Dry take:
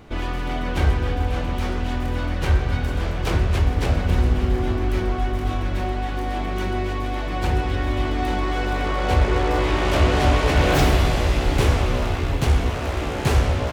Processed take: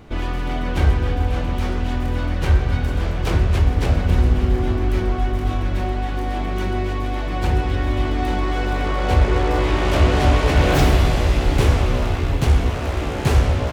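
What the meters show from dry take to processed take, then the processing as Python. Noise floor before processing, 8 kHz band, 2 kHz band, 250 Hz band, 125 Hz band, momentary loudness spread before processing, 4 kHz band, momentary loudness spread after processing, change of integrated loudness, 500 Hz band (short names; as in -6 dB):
-26 dBFS, 0.0 dB, 0.0 dB, +2.0 dB, +3.0 dB, 8 LU, 0.0 dB, 8 LU, +2.0 dB, +1.0 dB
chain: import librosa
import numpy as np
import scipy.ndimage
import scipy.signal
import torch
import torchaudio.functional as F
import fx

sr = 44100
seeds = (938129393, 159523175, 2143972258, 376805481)

y = fx.low_shelf(x, sr, hz=320.0, db=3.0)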